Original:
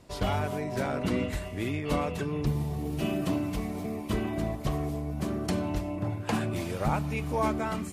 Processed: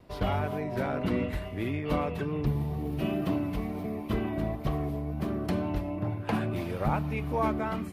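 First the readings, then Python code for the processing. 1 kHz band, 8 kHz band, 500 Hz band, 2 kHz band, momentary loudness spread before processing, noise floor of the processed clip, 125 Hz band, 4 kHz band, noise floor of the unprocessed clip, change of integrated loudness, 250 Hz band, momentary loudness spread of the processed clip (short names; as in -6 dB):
-0.5 dB, under -10 dB, 0.0 dB, -1.5 dB, 4 LU, -39 dBFS, 0.0 dB, -4.0 dB, -38 dBFS, 0.0 dB, 0.0 dB, 4 LU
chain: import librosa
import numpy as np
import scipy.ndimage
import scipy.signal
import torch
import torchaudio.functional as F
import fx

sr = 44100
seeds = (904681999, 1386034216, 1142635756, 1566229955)

y = fx.peak_eq(x, sr, hz=7400.0, db=-14.5, octaves=1.2)
y = fx.wow_flutter(y, sr, seeds[0], rate_hz=2.1, depth_cents=28.0)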